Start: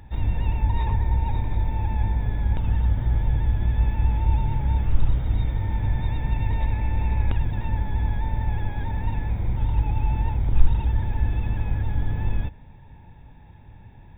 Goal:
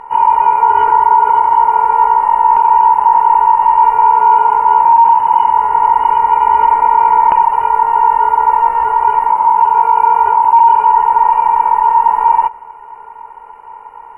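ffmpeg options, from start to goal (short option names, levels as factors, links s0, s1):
-af "aeval=exprs='val(0)*sin(2*PI*1700*n/s)':c=same,asetrate=24046,aresample=44100,atempo=1.83401,apsyclip=7.5,volume=0.794"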